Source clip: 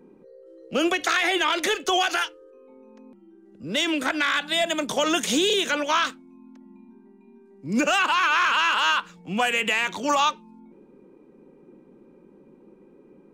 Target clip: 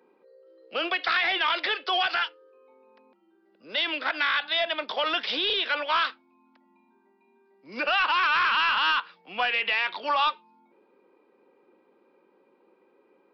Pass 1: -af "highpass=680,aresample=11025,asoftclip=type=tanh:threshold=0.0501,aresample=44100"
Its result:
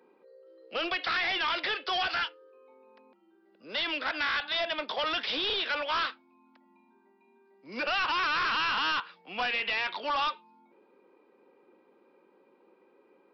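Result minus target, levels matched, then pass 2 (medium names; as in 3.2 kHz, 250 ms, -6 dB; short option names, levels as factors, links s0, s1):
saturation: distortion +11 dB
-af "highpass=680,aresample=11025,asoftclip=type=tanh:threshold=0.158,aresample=44100"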